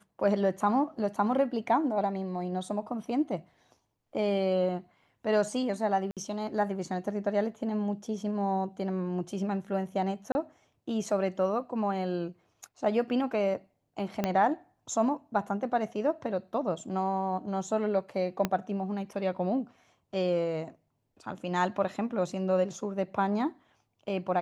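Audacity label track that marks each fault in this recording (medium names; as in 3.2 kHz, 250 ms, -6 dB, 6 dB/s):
6.110000	6.170000	dropout 57 ms
10.320000	10.350000	dropout 30 ms
14.240000	14.240000	pop -14 dBFS
18.450000	18.450000	pop -13 dBFS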